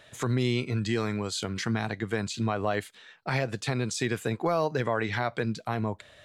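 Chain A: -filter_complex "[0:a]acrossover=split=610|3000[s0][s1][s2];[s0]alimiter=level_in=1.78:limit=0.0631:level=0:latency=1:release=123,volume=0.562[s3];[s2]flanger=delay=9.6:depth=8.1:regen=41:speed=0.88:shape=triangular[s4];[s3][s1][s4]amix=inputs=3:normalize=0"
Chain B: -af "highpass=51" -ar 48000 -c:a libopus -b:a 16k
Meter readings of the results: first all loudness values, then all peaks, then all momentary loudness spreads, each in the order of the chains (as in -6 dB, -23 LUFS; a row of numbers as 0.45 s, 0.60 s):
-33.5 LUFS, -30.5 LUFS; -17.0 dBFS, -15.0 dBFS; 5 LU, 5 LU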